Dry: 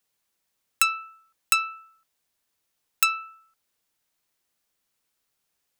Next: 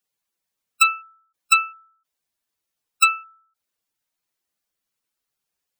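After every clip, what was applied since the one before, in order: spectral gate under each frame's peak -10 dB strong; upward expander 1.5:1, over -42 dBFS; gain +8 dB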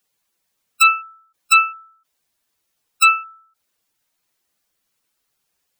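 maximiser +10 dB; gain -1 dB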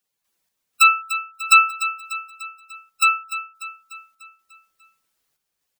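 random-step tremolo 4.1 Hz, depth 70%; feedback echo 0.296 s, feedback 54%, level -12 dB; gain +1 dB

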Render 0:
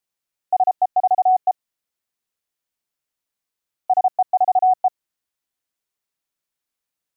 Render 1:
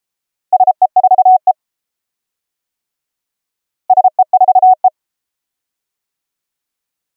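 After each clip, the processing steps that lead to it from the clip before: notch 620 Hz, Q 12; dynamic EQ 870 Hz, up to +6 dB, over -30 dBFS, Q 1.1; gain +4 dB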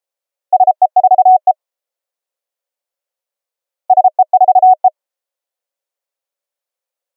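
resonant high-pass 560 Hz, resonance Q 6; gain -7 dB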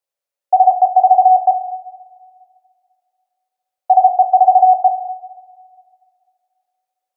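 reverb, pre-delay 3 ms, DRR 6.5 dB; gain -2 dB

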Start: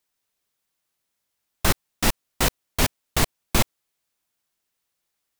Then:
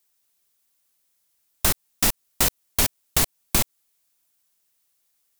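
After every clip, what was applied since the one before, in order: high shelf 5200 Hz +11 dB; compressor, threshold -16 dBFS, peak gain reduction 6.5 dB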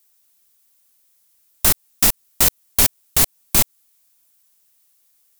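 high shelf 6800 Hz +5.5 dB; maximiser +5.5 dB; gain -1 dB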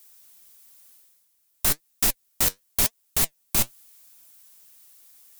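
reverse; upward compressor, threshold -32 dBFS; reverse; flange 0.99 Hz, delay 2 ms, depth 8.8 ms, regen +63%; gain -2.5 dB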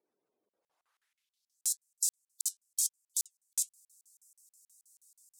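band-pass sweep 390 Hz -> 7700 Hz, 0.5–1.62; spectral gate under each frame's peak -20 dB strong; crackling interface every 0.16 s, samples 2048, zero, from 0.49

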